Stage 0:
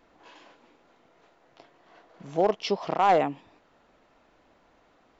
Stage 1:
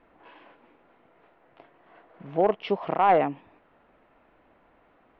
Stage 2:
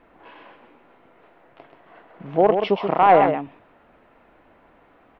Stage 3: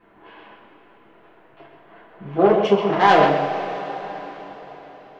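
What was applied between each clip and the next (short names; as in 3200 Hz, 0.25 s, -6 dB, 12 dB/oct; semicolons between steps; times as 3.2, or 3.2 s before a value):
LPF 2800 Hz 24 dB/oct; gain +1 dB
echo 0.131 s -6.5 dB; gain +5.5 dB
self-modulated delay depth 0.15 ms; two-slope reverb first 0.3 s, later 4.6 s, from -18 dB, DRR -8 dB; gain -7 dB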